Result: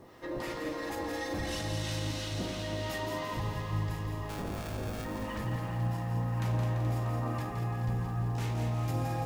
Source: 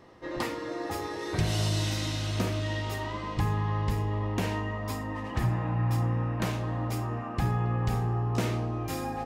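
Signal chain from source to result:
0:00.66–0:01.61: comb filter 3.7 ms, depth 79%
0:02.90–0:03.32: elliptic high-pass filter 150 Hz
brickwall limiter −29.5 dBFS, peak gain reduction 12 dB
0:04.29–0:05.05: sample-rate reduction 1,000 Hz, jitter 0%
two-band tremolo in antiphase 2.9 Hz, depth 70%, crossover 960 Hz
bit reduction 12 bits
on a send: delay that swaps between a low-pass and a high-pass 107 ms, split 910 Hz, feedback 85%, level −6 dB
on the sum: feedback echo at a low word length 170 ms, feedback 55%, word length 11 bits, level −6 dB
level +3 dB

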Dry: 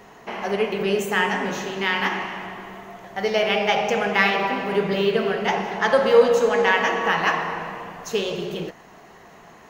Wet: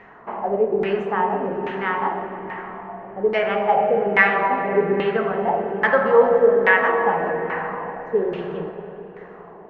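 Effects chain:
auto-filter low-pass saw down 1.2 Hz 360–2,100 Hz
comb and all-pass reverb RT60 4.8 s, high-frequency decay 0.5×, pre-delay 45 ms, DRR 8.5 dB
level −2 dB

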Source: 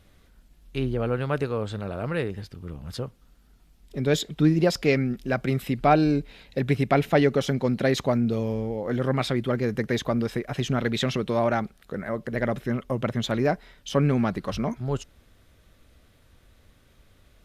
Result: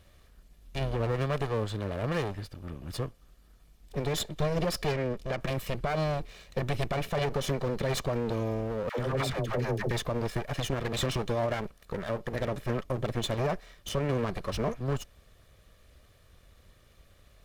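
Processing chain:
lower of the sound and its delayed copy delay 1.7 ms
0:04.91–0:05.41: high-shelf EQ 12,000 Hz −11.5 dB
0:08.89–0:09.91: all-pass dispersion lows, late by 93 ms, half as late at 600 Hz
brickwall limiter −20 dBFS, peak gain reduction 11 dB

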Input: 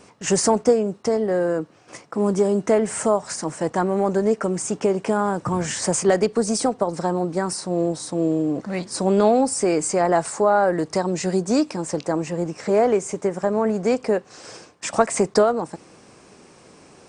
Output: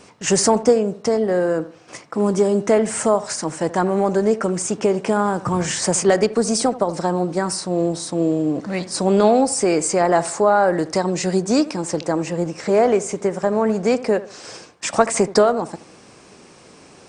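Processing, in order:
parametric band 3,700 Hz +3 dB 1.8 octaves
bucket-brigade delay 77 ms, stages 1,024, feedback 34%, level −16 dB
level +2 dB

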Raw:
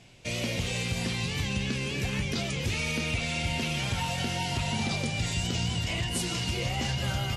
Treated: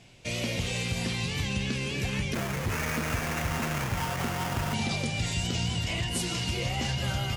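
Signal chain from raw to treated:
0:02.34–0:04.74: sample-rate reduction 4,100 Hz, jitter 20%

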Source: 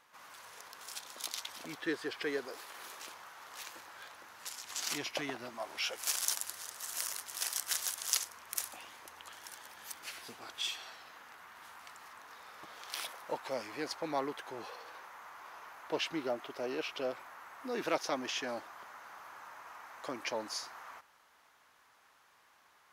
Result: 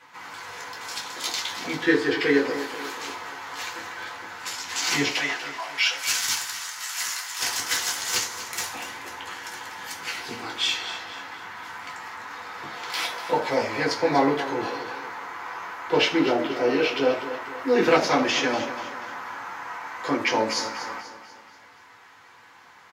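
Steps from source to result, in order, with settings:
0:05.13–0:07.39: high-pass filter 1,100 Hz 12 dB per octave
hard clipping −24 dBFS, distortion −15 dB
repeating echo 242 ms, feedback 46%, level −12.5 dB
convolution reverb RT60 0.35 s, pre-delay 3 ms, DRR −5 dB

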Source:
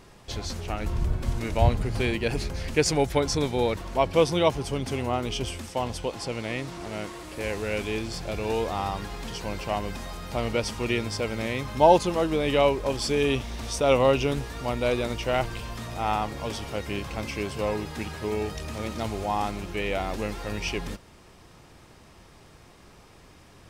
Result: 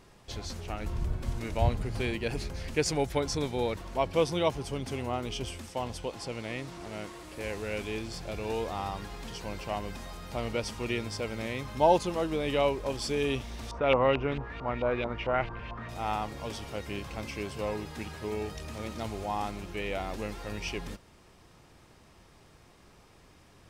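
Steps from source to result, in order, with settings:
0:13.71–0:15.89: auto-filter low-pass saw up 4.5 Hz 900–3,100 Hz
level −5.5 dB

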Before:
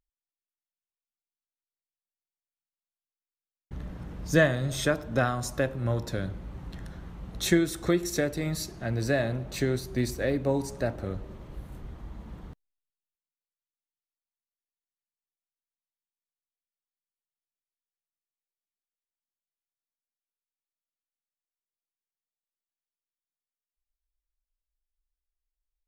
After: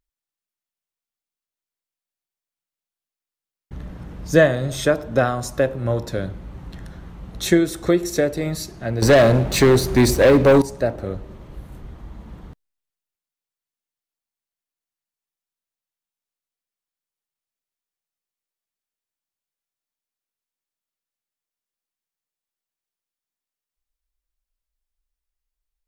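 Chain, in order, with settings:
dynamic equaliser 510 Hz, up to +6 dB, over −38 dBFS, Q 1.1
0:09.02–0:10.62: leveller curve on the samples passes 3
level +4 dB

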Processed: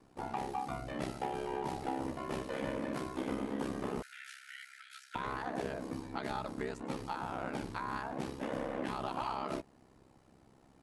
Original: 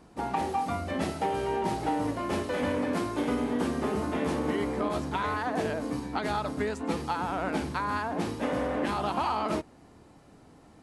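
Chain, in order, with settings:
ring modulation 33 Hz
0:04.02–0:05.15: linear-phase brick-wall high-pass 1,300 Hz
level −5.5 dB

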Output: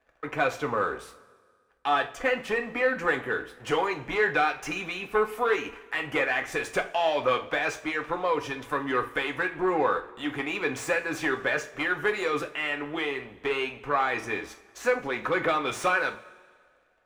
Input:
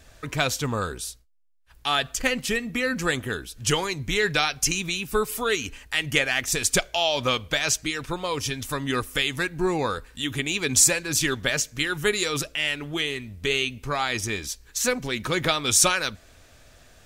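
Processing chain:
leveller curve on the samples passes 3
three-way crossover with the lows and the highs turned down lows −17 dB, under 330 Hz, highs −23 dB, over 2,200 Hz
coupled-rooms reverb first 0.29 s, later 1.7 s, from −19 dB, DRR 4 dB
level −8 dB

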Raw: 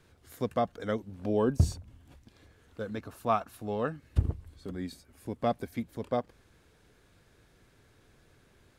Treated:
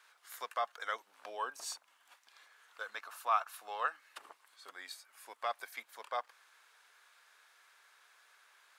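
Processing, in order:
brickwall limiter −20.5 dBFS, peak gain reduction 8 dB
four-pole ladder high-pass 850 Hz, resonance 30%
level +9 dB

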